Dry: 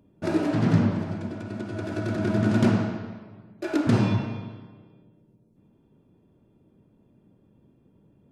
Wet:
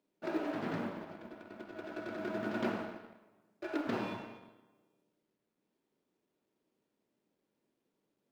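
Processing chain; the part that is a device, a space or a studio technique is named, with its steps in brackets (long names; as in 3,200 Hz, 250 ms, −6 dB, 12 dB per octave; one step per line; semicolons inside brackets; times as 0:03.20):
phone line with mismatched companding (band-pass filter 370–3,500 Hz; mu-law and A-law mismatch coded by A)
level −6.5 dB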